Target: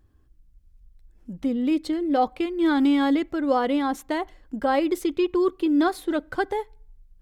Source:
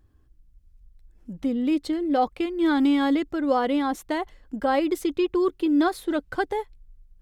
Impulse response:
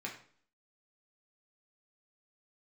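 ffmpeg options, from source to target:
-filter_complex "[0:a]asplit=2[link_01][link_02];[1:a]atrim=start_sample=2205,highshelf=frequency=4200:gain=-10[link_03];[link_02][link_03]afir=irnorm=-1:irlink=0,volume=-21dB[link_04];[link_01][link_04]amix=inputs=2:normalize=0"

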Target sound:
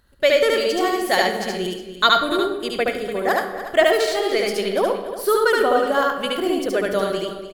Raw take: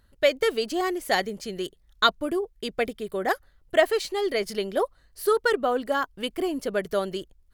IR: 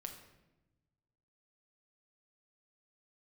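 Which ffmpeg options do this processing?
-filter_complex "[0:a]lowshelf=frequency=220:gain=-4.5,aecho=1:1:290:0.237,asplit=2[link_01][link_02];[1:a]atrim=start_sample=2205,adelay=72[link_03];[link_02][link_03]afir=irnorm=-1:irlink=0,volume=4dB[link_04];[link_01][link_04]amix=inputs=2:normalize=0,volume=3.5dB"

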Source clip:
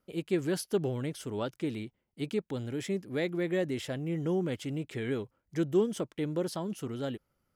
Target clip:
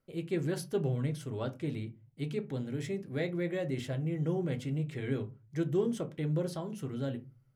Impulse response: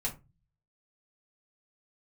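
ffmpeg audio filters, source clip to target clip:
-filter_complex "[0:a]equalizer=frequency=130:width_type=o:width=0.26:gain=5,asplit=2[link_01][link_02];[1:a]atrim=start_sample=2205,highshelf=frequency=5200:gain=-10.5[link_03];[link_02][link_03]afir=irnorm=-1:irlink=0,volume=-3dB[link_04];[link_01][link_04]amix=inputs=2:normalize=0,volume=-7dB"

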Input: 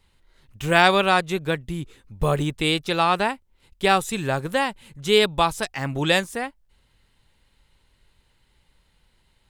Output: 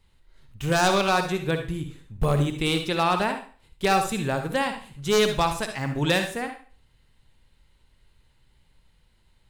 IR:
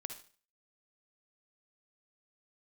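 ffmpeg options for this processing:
-filter_complex "[0:a]lowshelf=frequency=210:gain=5.5,aeval=exprs='0.355*(abs(mod(val(0)/0.355+3,4)-2)-1)':channel_layout=same[link_01];[1:a]atrim=start_sample=2205[link_02];[link_01][link_02]afir=irnorm=-1:irlink=0"

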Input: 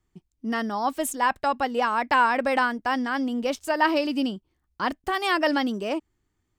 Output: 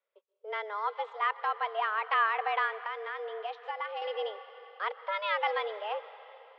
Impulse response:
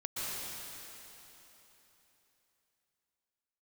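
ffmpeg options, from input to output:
-filter_complex "[0:a]highpass=frequency=260:width_type=q:width=0.5412,highpass=frequency=260:width_type=q:width=1.307,lowpass=frequency=3500:width_type=q:width=0.5176,lowpass=frequency=3500:width_type=q:width=0.7071,lowpass=frequency=3500:width_type=q:width=1.932,afreqshift=210,asplit=2[link_01][link_02];[1:a]atrim=start_sample=2205,asetrate=42777,aresample=44100[link_03];[link_02][link_03]afir=irnorm=-1:irlink=0,volume=-18dB[link_04];[link_01][link_04]amix=inputs=2:normalize=0,asettb=1/sr,asplit=3[link_05][link_06][link_07];[link_05]atrim=end=2.724[link_08];[link_06]atrim=start=2.72:end=4.02,asetpts=PTS-STARTPTS,afade=type=in:duration=0.004:curve=qsin,afade=type=out:start_time=1.296:duration=0.004:curve=qsin,acompressor=threshold=-26dB:ratio=6[link_09];[link_07]atrim=start=4.016[link_10];[link_08][link_09]acrossfade=duration=0.004:curve1=hsin:curve2=qsin[link_11];[link_11][link_10]acrossfade=duration=0.004:curve1=qsin:curve2=hsin,volume=-7.5dB"

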